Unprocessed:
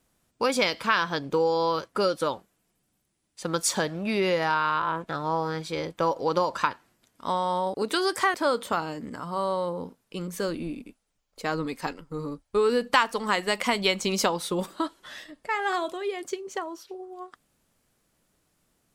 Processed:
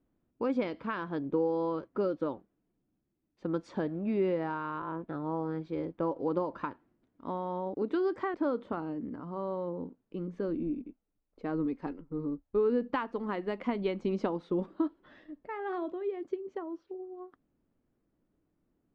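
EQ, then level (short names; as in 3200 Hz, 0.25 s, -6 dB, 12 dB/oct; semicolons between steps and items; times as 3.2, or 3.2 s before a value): tape spacing loss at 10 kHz 44 dB; low shelf 110 Hz +5 dB; bell 300 Hz +10.5 dB 1 oct; -8.0 dB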